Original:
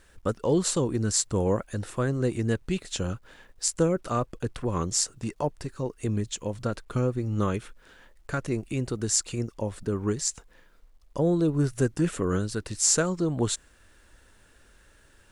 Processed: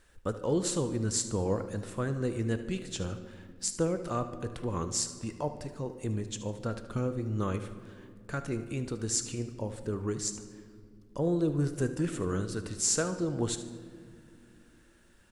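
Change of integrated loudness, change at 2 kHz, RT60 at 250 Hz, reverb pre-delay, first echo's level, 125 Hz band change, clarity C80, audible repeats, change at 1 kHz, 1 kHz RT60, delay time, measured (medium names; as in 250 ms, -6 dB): -5.0 dB, -5.0 dB, 3.8 s, 6 ms, -14.5 dB, -4.5 dB, 13.0 dB, 2, -5.0 dB, 1.8 s, 75 ms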